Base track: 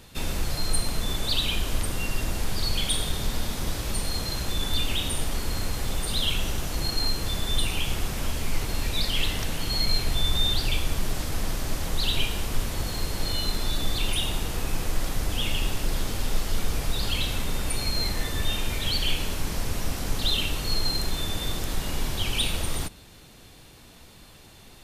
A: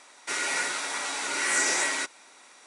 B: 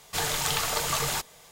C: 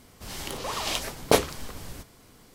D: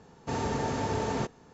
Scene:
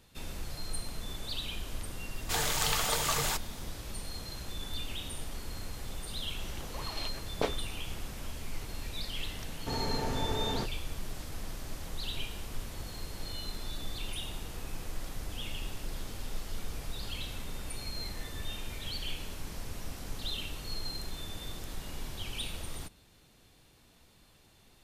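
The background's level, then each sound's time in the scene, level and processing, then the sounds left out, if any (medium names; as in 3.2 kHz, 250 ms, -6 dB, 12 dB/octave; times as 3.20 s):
base track -12 dB
2.16 s: add B -3 dB
6.10 s: add C -11.5 dB + low-pass 4.2 kHz
9.39 s: add D -4.5 dB
not used: A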